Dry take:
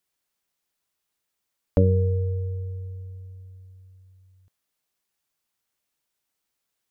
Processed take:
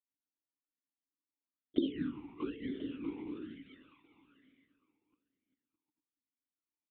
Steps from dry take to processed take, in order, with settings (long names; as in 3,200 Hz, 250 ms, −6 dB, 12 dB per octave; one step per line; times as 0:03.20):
gate on every frequency bin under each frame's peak −15 dB weak
tilt shelving filter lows +7.5 dB
in parallel at −2.5 dB: downward compressor, threshold −43 dBFS, peak gain reduction 16.5 dB
on the sum: sample-and-hold swept by an LFO 21×, swing 100% 1 Hz
on a send: bouncing-ball delay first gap 650 ms, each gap 0.6×, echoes 5
on the sum: linear-prediction vocoder at 8 kHz whisper
formant filter swept between two vowels i-u 1.1 Hz
level +7.5 dB